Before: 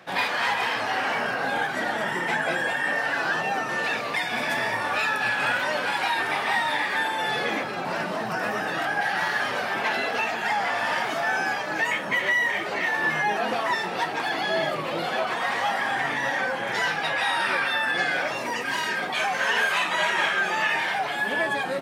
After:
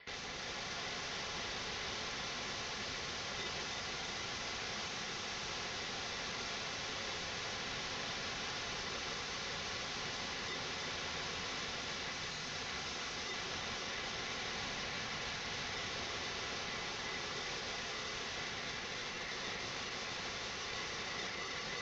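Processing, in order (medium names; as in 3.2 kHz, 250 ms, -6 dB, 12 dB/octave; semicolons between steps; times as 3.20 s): Doppler pass-by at 5.90 s, 9 m/s, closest 10 m; ring modulator 810 Hz; spectral gate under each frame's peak -15 dB strong; bass shelf 310 Hz +11 dB; reverse; compression 16:1, threshold -40 dBFS, peak gain reduction 21 dB; reverse; integer overflow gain 44 dB; ring modulator 2 kHz; steep low-pass 6.4 kHz 72 dB/octave; comb of notches 310 Hz; echo whose repeats swap between lows and highs 160 ms, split 1.2 kHz, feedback 86%, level -3 dB; trim +10 dB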